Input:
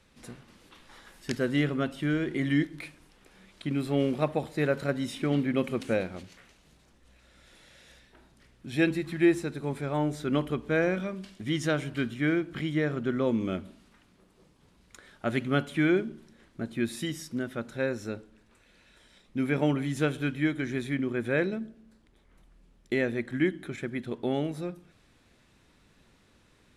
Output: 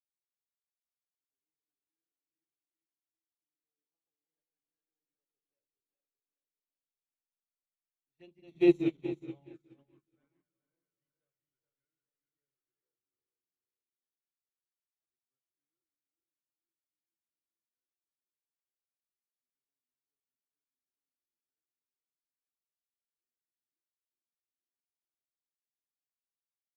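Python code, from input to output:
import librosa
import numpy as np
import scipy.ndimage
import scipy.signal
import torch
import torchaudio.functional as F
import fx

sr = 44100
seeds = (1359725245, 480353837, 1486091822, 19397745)

p1 = fx.reverse_delay_fb(x, sr, ms=213, feedback_pct=72, wet_db=-5.0)
p2 = fx.doppler_pass(p1, sr, speed_mps=23, closest_m=4.4, pass_at_s=8.76)
p3 = fx.peak_eq(p2, sr, hz=9900.0, db=-12.5, octaves=0.56)
p4 = fx.hum_notches(p3, sr, base_hz=60, count=8)
p5 = fx.backlash(p4, sr, play_db=-36.0)
p6 = p4 + (p5 * 10.0 ** (-10.0 / 20.0))
p7 = fx.env_flanger(p6, sr, rest_ms=3.0, full_db=-30.0)
p8 = p7 + fx.echo_feedback(p7, sr, ms=422, feedback_pct=42, wet_db=-6.5, dry=0)
y = fx.upward_expand(p8, sr, threshold_db=-46.0, expansion=2.5)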